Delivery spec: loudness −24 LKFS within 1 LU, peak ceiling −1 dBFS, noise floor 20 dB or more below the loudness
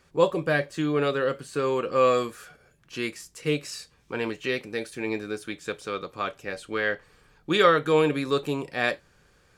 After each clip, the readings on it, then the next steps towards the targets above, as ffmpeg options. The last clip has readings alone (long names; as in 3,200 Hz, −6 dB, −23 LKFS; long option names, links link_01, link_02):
integrated loudness −26.5 LKFS; sample peak −6.5 dBFS; target loudness −24.0 LKFS
→ -af "volume=2.5dB"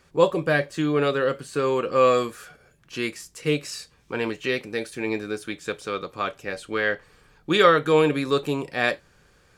integrated loudness −24.0 LKFS; sample peak −4.0 dBFS; background noise floor −59 dBFS